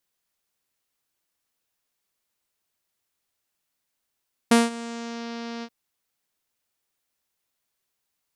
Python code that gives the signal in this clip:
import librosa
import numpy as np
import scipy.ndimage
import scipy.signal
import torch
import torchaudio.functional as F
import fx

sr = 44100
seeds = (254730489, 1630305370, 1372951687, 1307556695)

y = fx.sub_voice(sr, note=58, wave='saw', cutoff_hz=5400.0, q=1.7, env_oct=1.0, env_s=0.75, attack_ms=6.5, decay_s=0.18, sustain_db=-20, release_s=0.06, note_s=1.12, slope=24)